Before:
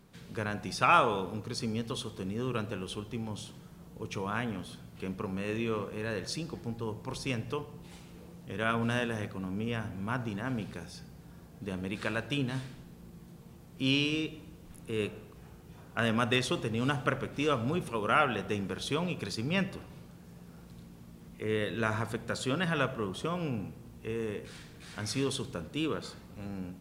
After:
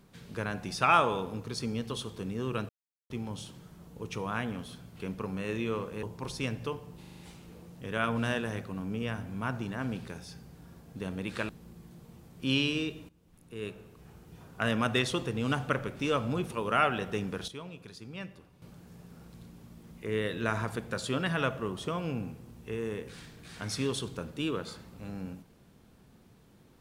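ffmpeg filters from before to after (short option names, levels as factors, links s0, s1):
-filter_complex "[0:a]asplit=13[s0][s1][s2][s3][s4][s5][s6][s7][s8][s9][s10][s11][s12];[s0]atrim=end=2.69,asetpts=PTS-STARTPTS,afade=t=out:st=2.686:d=0.004:c=hsin[s13];[s1]atrim=start=2.69:end=3.1,asetpts=PTS-STARTPTS,volume=0[s14];[s2]atrim=start=3.1:end=6.032,asetpts=PTS-STARTPTS,afade=t=in:d=0.004:c=hsin[s15];[s3]atrim=start=6.888:end=7.892[s16];[s4]atrim=start=7.848:end=7.892[s17];[s5]atrim=start=7.848:end=7.892[s18];[s6]atrim=start=7.848:end=7.892[s19];[s7]atrim=start=7.848:end=7.892[s20];[s8]atrim=start=7.848:end=12.152[s21];[s9]atrim=start=12.858:end=14.46,asetpts=PTS-STARTPTS,afade=t=out:st=1.598:d=0.004:c=hsin:silence=0.125893[s22];[s10]atrim=start=14.46:end=18.852,asetpts=PTS-STARTPTS,afade=t=in:d=1.23:silence=0.125893[s23];[s11]atrim=start=18.848:end=19.992,asetpts=PTS-STARTPTS,volume=0.266[s24];[s12]atrim=start=19.988[s25];[s13][s14][s15]concat=n=3:v=0:a=1[s26];[s26][s16]acrossfade=d=0.004:c1=hsin:c2=hsin[s27];[s27][s17]acrossfade=d=0.004:c1=hsin:c2=hsin[s28];[s28][s18]acrossfade=d=0.004:c1=hsin:c2=hsin[s29];[s29][s19]acrossfade=d=0.004:c1=hsin:c2=hsin[s30];[s30][s20]acrossfade=d=0.004:c1=hsin:c2=hsin[s31];[s31][s21]acrossfade=d=0.004:c1=hsin:c2=hsin[s32];[s22][s23]concat=n=2:v=0:a=1[s33];[s32][s33]acrossfade=d=0.004:c1=hsin:c2=hsin[s34];[s34][s24]acrossfade=d=0.004:c1=hsin:c2=hsin[s35];[s35][s25]acrossfade=d=0.004:c1=hsin:c2=hsin"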